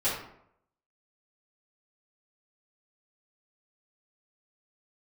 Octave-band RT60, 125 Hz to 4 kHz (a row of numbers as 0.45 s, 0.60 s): 0.75 s, 0.70 s, 0.75 s, 0.70 s, 0.60 s, 0.40 s